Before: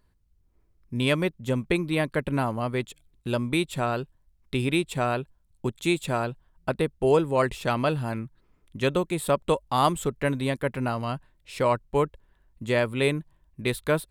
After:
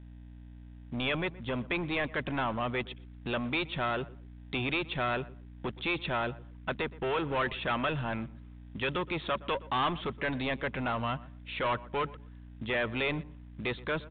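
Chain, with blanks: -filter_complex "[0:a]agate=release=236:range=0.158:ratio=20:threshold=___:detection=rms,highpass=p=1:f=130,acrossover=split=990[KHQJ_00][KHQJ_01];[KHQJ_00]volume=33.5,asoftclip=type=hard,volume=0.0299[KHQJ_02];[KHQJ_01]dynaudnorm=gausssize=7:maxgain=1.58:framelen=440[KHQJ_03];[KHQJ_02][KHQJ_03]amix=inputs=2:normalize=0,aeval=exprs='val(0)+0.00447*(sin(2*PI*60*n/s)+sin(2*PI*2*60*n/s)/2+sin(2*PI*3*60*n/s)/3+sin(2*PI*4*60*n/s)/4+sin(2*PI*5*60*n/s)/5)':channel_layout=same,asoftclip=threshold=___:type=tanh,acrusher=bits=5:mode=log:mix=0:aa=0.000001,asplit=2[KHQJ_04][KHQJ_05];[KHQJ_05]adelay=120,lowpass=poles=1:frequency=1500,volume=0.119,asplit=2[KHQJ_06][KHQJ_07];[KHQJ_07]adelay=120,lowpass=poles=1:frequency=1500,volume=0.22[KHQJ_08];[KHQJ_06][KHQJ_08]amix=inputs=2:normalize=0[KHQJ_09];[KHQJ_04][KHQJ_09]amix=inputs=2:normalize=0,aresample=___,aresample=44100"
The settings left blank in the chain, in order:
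0.00282, 0.0631, 8000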